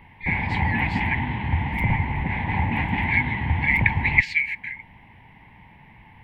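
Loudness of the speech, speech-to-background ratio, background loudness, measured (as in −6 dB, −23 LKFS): −24.5 LKFS, 0.5 dB, −25.0 LKFS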